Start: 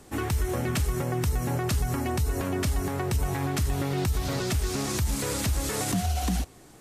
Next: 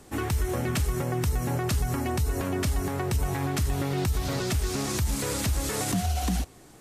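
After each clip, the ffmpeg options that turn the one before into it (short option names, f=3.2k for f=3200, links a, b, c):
-af anull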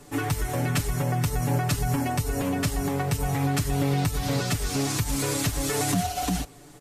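-af "aecho=1:1:6.9:0.92"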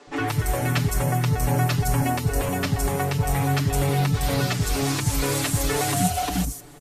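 -filter_complex "[0:a]acrossover=split=280|6000[a][b][c];[a]adelay=70[d];[c]adelay=160[e];[d][b][e]amix=inputs=3:normalize=0,volume=4dB"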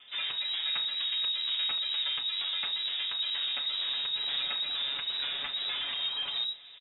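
-filter_complex "[0:a]asoftclip=type=tanh:threshold=-24dB,asplit=2[a][b];[b]adelay=33,volume=-12dB[c];[a][c]amix=inputs=2:normalize=0,lowpass=f=3.3k:t=q:w=0.5098,lowpass=f=3.3k:t=q:w=0.6013,lowpass=f=3.3k:t=q:w=0.9,lowpass=f=3.3k:t=q:w=2.563,afreqshift=-3900,volume=-5dB"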